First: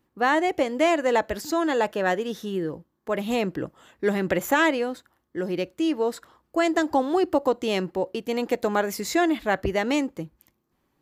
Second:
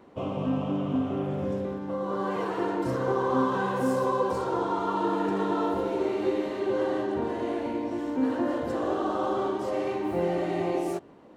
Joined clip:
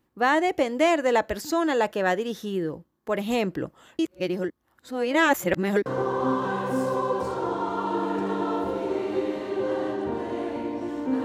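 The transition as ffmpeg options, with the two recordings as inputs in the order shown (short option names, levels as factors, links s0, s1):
-filter_complex "[0:a]apad=whole_dur=11.24,atrim=end=11.24,asplit=2[s0][s1];[s0]atrim=end=3.992[s2];[s1]atrim=start=3.988:end=5.862,asetpts=PTS-STARTPTS,areverse[s3];[1:a]atrim=start=2.958:end=8.34[s4];[s2][s3]acrossfade=d=0.004:c1=hsin:c2=hsin[s5];[s5][s4]acrossfade=d=0.004:c1=hsin:c2=hsin"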